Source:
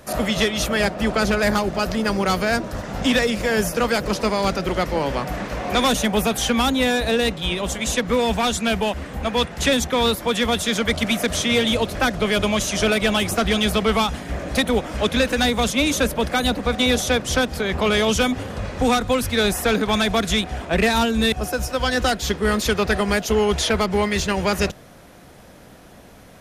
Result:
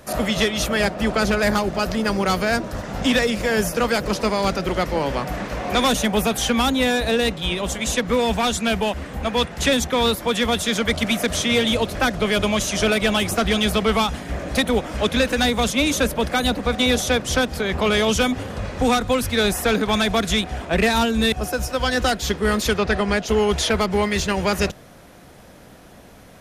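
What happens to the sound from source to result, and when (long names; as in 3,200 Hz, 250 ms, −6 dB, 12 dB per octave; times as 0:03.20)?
0:22.77–0:23.29: high-frequency loss of the air 58 metres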